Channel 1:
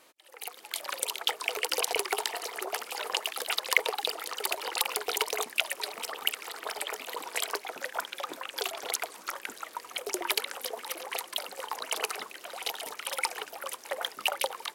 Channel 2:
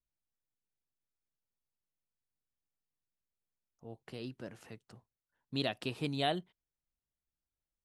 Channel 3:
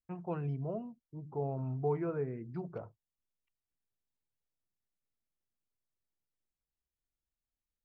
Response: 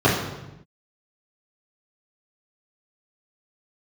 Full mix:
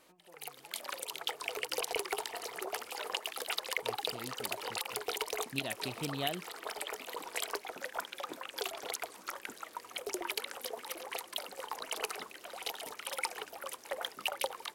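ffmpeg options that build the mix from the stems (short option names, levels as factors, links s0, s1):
-filter_complex "[0:a]lowshelf=f=280:g=9,volume=0.531[s0];[1:a]volume=0.708[s1];[2:a]acompressor=threshold=0.00355:ratio=2.5,equalizer=f=140:t=o:w=1.4:g=-12,volume=0.237[s2];[s0][s1][s2]amix=inputs=3:normalize=0,alimiter=limit=0.133:level=0:latency=1:release=127"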